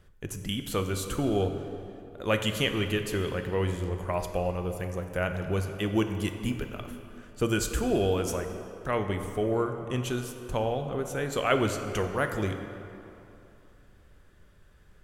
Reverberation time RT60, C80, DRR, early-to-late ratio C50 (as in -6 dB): 2.9 s, 8.0 dB, 6.0 dB, 7.5 dB